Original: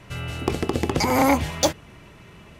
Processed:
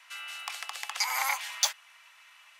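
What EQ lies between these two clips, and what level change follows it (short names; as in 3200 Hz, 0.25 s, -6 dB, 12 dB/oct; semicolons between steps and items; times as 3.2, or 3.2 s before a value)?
Bessel high-pass 1500 Hz, order 8; -1.5 dB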